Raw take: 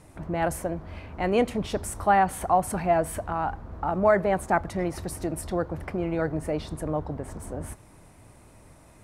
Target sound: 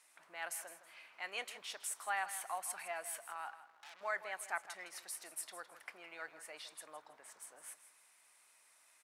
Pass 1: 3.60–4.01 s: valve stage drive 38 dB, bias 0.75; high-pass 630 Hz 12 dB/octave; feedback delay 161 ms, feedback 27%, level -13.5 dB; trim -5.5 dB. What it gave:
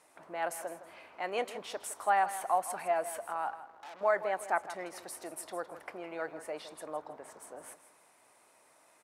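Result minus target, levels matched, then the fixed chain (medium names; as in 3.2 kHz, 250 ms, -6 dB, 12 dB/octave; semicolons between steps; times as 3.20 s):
500 Hz band +7.0 dB
3.60–4.01 s: valve stage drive 38 dB, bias 0.75; high-pass 1.8 kHz 12 dB/octave; feedback delay 161 ms, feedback 27%, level -13.5 dB; trim -5.5 dB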